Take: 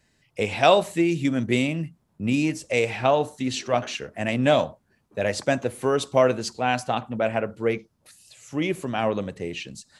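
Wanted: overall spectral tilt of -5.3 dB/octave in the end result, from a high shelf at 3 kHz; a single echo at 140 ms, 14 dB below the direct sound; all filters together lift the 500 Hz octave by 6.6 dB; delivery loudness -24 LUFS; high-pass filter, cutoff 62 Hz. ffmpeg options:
-af "highpass=62,equalizer=f=500:t=o:g=8.5,highshelf=f=3000:g=-7,aecho=1:1:140:0.2,volume=0.596"

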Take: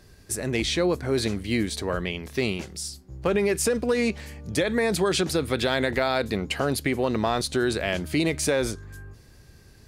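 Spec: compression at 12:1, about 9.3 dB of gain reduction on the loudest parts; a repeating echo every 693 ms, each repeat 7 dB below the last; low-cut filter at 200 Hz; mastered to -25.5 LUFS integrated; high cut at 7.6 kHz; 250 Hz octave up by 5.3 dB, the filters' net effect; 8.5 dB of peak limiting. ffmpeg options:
-af "highpass=200,lowpass=7600,equalizer=f=250:t=o:g=8.5,acompressor=threshold=0.0562:ratio=12,alimiter=limit=0.0794:level=0:latency=1,aecho=1:1:693|1386|2079|2772|3465:0.447|0.201|0.0905|0.0407|0.0183,volume=2.11"

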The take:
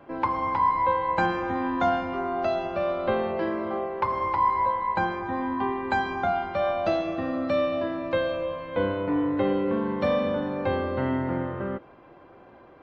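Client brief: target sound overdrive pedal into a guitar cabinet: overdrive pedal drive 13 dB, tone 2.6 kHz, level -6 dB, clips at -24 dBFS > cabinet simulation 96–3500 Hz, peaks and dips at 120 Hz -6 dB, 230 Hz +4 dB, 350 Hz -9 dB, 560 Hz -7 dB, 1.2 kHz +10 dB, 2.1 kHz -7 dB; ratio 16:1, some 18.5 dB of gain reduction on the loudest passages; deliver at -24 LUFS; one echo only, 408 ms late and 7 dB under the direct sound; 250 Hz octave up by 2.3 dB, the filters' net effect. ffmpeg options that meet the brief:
-filter_complex "[0:a]equalizer=f=250:t=o:g=4,acompressor=threshold=0.0141:ratio=16,aecho=1:1:408:0.447,asplit=2[s0][s1];[s1]highpass=f=720:p=1,volume=4.47,asoftclip=type=tanh:threshold=0.0631[s2];[s0][s2]amix=inputs=2:normalize=0,lowpass=f=2600:p=1,volume=0.501,highpass=96,equalizer=f=120:t=q:w=4:g=-6,equalizer=f=230:t=q:w=4:g=4,equalizer=f=350:t=q:w=4:g=-9,equalizer=f=560:t=q:w=4:g=-7,equalizer=f=1200:t=q:w=4:g=10,equalizer=f=2100:t=q:w=4:g=-7,lowpass=f=3500:w=0.5412,lowpass=f=3500:w=1.3066,volume=3.98"

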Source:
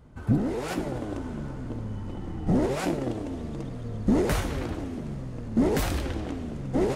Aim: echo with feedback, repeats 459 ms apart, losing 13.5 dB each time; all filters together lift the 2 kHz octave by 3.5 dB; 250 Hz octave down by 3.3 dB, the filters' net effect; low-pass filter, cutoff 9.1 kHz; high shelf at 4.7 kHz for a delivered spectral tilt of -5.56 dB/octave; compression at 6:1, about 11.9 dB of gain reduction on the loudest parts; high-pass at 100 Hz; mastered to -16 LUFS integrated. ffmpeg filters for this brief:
-af "highpass=100,lowpass=9100,equalizer=f=250:t=o:g=-4,equalizer=f=2000:t=o:g=3.5,highshelf=f=4700:g=5.5,acompressor=threshold=0.02:ratio=6,aecho=1:1:459|918:0.211|0.0444,volume=13.3"

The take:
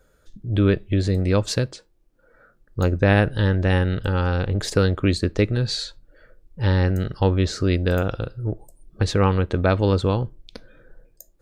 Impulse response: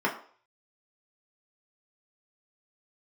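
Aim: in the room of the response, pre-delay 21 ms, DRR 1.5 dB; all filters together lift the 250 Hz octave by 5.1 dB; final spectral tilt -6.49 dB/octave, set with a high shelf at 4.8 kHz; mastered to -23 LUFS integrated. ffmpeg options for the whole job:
-filter_complex "[0:a]equalizer=f=250:t=o:g=7,highshelf=f=4800:g=6.5,asplit=2[s0][s1];[1:a]atrim=start_sample=2205,adelay=21[s2];[s1][s2]afir=irnorm=-1:irlink=0,volume=0.211[s3];[s0][s3]amix=inputs=2:normalize=0,volume=0.473"

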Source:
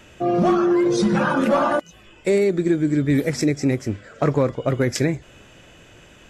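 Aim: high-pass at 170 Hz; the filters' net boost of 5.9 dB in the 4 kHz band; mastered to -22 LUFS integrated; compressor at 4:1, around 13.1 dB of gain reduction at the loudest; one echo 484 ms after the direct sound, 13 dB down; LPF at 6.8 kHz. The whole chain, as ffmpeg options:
-af "highpass=170,lowpass=6800,equalizer=f=4000:t=o:g=8.5,acompressor=threshold=0.0282:ratio=4,aecho=1:1:484:0.224,volume=3.55"

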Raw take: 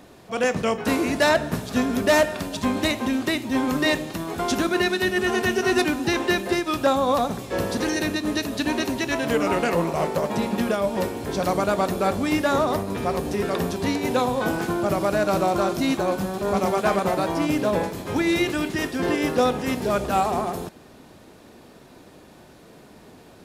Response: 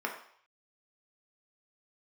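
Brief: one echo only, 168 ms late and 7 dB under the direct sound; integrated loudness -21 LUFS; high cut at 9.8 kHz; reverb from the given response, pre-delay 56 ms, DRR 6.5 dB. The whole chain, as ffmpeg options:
-filter_complex "[0:a]lowpass=9800,aecho=1:1:168:0.447,asplit=2[s0][s1];[1:a]atrim=start_sample=2205,adelay=56[s2];[s1][s2]afir=irnorm=-1:irlink=0,volume=0.237[s3];[s0][s3]amix=inputs=2:normalize=0,volume=1.12"

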